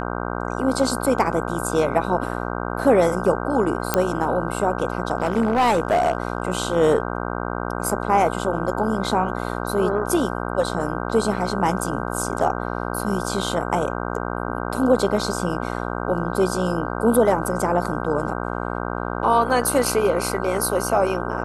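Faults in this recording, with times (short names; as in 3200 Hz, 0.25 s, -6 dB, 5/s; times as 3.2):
buzz 60 Hz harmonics 26 -27 dBFS
3.94 pop -2 dBFS
5.17–6.47 clipped -13.5 dBFS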